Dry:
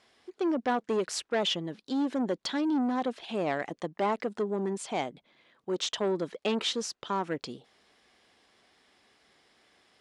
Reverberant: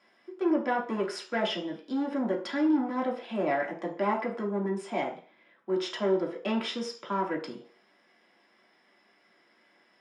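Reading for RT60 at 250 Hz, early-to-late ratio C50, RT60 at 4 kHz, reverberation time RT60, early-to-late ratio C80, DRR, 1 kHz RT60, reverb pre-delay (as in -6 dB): 0.40 s, 9.5 dB, 0.55 s, 0.45 s, 13.0 dB, -2.5 dB, 0.50 s, 3 ms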